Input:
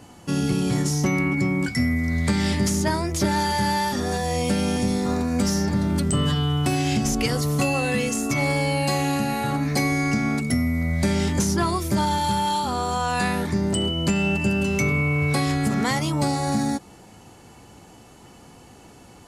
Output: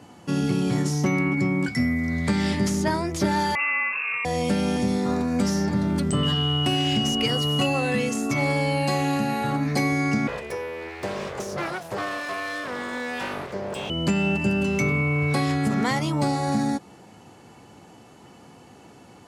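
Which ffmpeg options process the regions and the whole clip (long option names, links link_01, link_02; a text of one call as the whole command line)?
ffmpeg -i in.wav -filter_complex "[0:a]asettb=1/sr,asplit=3[link_01][link_02][link_03];[link_01]atrim=end=3.554[link_04];[link_02]atrim=start=3.55:end=4.25,asetpts=PTS-STARTPTS,afade=type=in:duration=0.004:curve=qsin,afade=type=out:start_time=0.696:duration=0.004:curve=qsin,highpass=180,lowpass=frequency=2500:width_type=q:width=0.5098,lowpass=frequency=2500:width_type=q:width=0.6013,lowpass=frequency=2500:width_type=q:width=0.9,lowpass=frequency=2500:width_type=q:width=2.563,afreqshift=-2900[link_05];[link_03]atrim=start=4.246[link_06];[link_04][link_05]acrossfade=duration=0.004:curve1=hsin:curve2=qsin[link_07];[link_07][link_06]acrossfade=duration=0.004:curve1=qsin:curve2=hsin,asettb=1/sr,asplit=3[link_08][link_09][link_10];[link_08]atrim=end=6.234[link_11];[link_09]atrim=start=6.23:end=7.66,asetpts=PTS-STARTPTS,afade=type=in:duration=0.004:curve=qsin,afade=type=out:start_time=1.426:duration=0.004:curve=qsin,aeval=exprs='sgn(val(0))*max(abs(val(0))-0.01,0)':channel_layout=same,aeval=exprs='val(0)+0.0631*sin(2*PI*2900*n/s)':channel_layout=same[link_12];[link_10]atrim=start=7.656[link_13];[link_11][link_12]acrossfade=duration=0.004:curve1=hsin:curve2=qsin[link_14];[link_14][link_13]acrossfade=duration=0.004:curve1=qsin:curve2=hsin,asettb=1/sr,asplit=3[link_15][link_16][link_17];[link_15]atrim=end=10.274[link_18];[link_16]atrim=start=10.27:end=13.9,asetpts=PTS-STARTPTS,afade=type=in:duration=0.004:curve=qsin,afade=type=out:start_time=3.626:duration=0.004:curve=qsin,highpass=frequency=190:width=0.5412,highpass=frequency=190:width=1.3066,highshelf=frequency=2400:gain=-8,aeval=exprs='abs(val(0))':channel_layout=same[link_19];[link_17]atrim=start=13.896[link_20];[link_18][link_19]acrossfade=duration=0.004:curve1=hsin:curve2=qsin[link_21];[link_21][link_20]acrossfade=duration=0.004:curve1=qsin:curve2=hsin,highpass=110,highshelf=frequency=5600:gain=-8.5" out.wav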